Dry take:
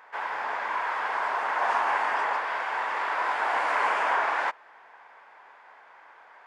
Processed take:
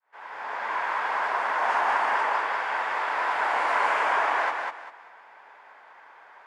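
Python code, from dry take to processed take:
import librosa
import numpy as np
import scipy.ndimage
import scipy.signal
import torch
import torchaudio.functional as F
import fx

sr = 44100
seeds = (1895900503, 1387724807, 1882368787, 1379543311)

y = fx.fade_in_head(x, sr, length_s=0.72)
y = fx.echo_feedback(y, sr, ms=197, feedback_pct=27, wet_db=-4.0)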